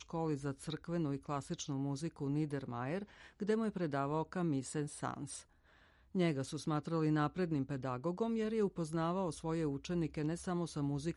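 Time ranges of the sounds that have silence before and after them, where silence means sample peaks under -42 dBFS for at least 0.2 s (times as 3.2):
3.41–5.39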